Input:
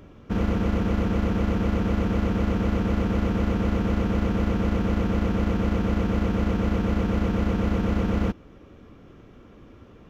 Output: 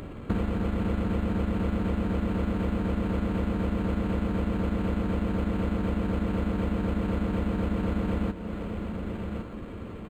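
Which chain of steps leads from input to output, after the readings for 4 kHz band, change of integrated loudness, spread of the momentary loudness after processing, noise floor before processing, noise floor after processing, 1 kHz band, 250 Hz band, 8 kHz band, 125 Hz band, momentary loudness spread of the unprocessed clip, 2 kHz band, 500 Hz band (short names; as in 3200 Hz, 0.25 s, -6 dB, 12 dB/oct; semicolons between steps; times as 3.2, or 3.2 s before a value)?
-5.5 dB, -4.5 dB, 6 LU, -49 dBFS, -39 dBFS, -4.0 dB, -3.5 dB, n/a, -4.0 dB, 0 LU, -4.5 dB, -3.5 dB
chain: echo 1.107 s -20 dB; compressor 16:1, threshold -32 dBFS, peak gain reduction 13.5 dB; high shelf 3400 Hz +9 dB; diffused feedback echo 0.512 s, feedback 71%, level -15 dB; decimation joined by straight lines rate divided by 8×; gain +8 dB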